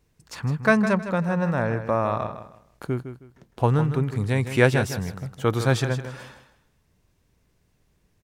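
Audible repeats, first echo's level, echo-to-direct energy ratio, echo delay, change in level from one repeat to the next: 3, -10.5 dB, -10.0 dB, 0.158 s, -11.5 dB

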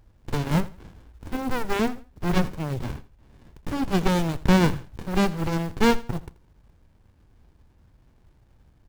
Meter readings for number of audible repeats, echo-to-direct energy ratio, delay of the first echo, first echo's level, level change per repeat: 2, -18.0 dB, 83 ms, -18.5 dB, -11.0 dB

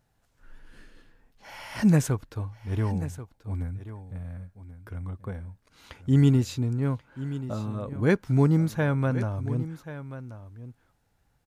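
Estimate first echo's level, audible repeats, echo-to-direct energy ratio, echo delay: -13.5 dB, 1, -13.5 dB, 1.084 s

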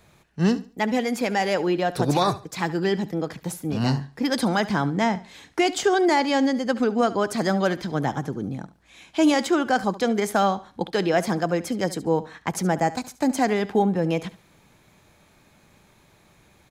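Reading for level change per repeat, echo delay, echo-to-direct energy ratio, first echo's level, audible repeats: -11.5 dB, 71 ms, -16.5 dB, -17.0 dB, 2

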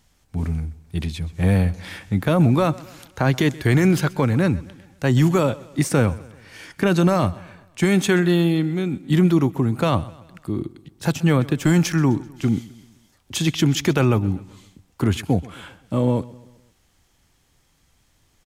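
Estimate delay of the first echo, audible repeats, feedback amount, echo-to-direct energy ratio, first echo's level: 0.129 s, 3, 48%, -19.5 dB, -20.5 dB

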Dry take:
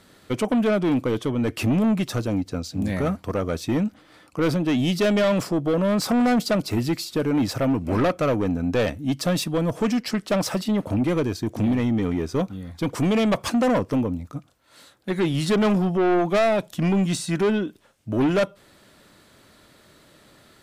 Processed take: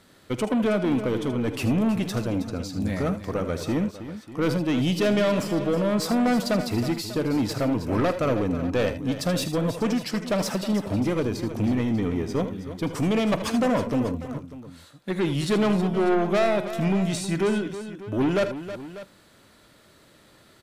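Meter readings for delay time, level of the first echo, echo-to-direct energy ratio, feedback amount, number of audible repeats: 48 ms, -17.5 dB, -7.5 dB, no steady repeat, 4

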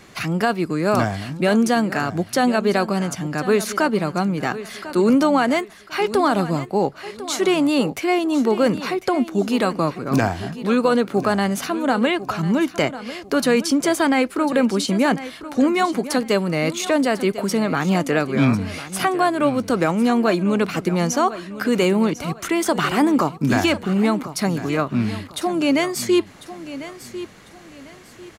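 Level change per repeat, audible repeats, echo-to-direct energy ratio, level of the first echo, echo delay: -10.5 dB, 3, -13.5 dB, -14.0 dB, 1.048 s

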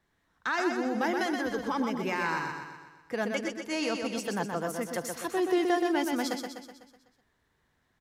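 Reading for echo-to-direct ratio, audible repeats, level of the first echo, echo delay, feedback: -3.5 dB, 6, -5.0 dB, 0.125 s, 53%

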